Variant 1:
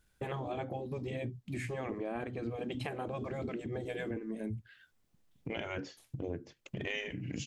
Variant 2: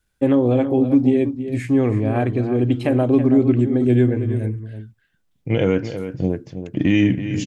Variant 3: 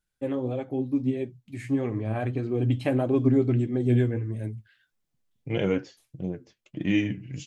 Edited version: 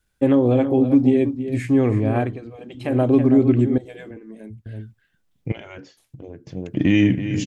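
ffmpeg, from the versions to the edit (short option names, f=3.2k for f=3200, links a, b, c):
-filter_complex "[0:a]asplit=3[a][b][c];[1:a]asplit=4[d][e][f][g];[d]atrim=end=2.41[h];[a]atrim=start=2.17:end=3[i];[e]atrim=start=2.76:end=3.782[j];[b]atrim=start=3.778:end=4.662[k];[f]atrim=start=4.658:end=5.522[l];[c]atrim=start=5.518:end=6.472[m];[g]atrim=start=6.468[n];[h][i]acrossfade=d=0.24:c1=tri:c2=tri[o];[o][j]acrossfade=d=0.24:c1=tri:c2=tri[p];[p][k]acrossfade=d=0.004:c1=hsin:c2=hsin[q];[q][l]acrossfade=d=0.004:c1=hsin:c2=hsin[r];[r][m]acrossfade=d=0.004:c1=hsin:c2=hsin[s];[s][n]acrossfade=d=0.004:c1=hsin:c2=hsin"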